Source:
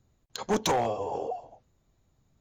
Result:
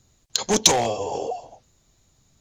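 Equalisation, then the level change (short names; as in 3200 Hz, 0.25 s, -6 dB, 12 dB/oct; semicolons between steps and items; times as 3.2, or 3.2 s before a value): bell 6400 Hz +13 dB 2.5 oct; dynamic EQ 1300 Hz, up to -6 dB, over -42 dBFS, Q 1.3; +5.0 dB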